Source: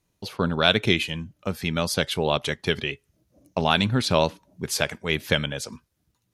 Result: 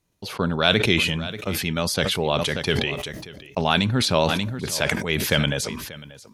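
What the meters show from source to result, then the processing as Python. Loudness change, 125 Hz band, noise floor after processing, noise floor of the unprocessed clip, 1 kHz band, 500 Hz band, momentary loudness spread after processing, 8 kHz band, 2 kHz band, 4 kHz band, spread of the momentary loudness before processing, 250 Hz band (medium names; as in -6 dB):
+2.0 dB, +3.0 dB, -48 dBFS, -74 dBFS, +1.0 dB, +1.5 dB, 13 LU, +4.0 dB, +2.5 dB, +2.5 dB, 12 LU, +2.5 dB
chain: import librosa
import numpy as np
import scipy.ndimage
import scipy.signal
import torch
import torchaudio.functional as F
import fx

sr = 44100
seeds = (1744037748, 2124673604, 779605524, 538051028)

p1 = x + fx.echo_single(x, sr, ms=586, db=-19.0, dry=0)
y = fx.sustainer(p1, sr, db_per_s=34.0)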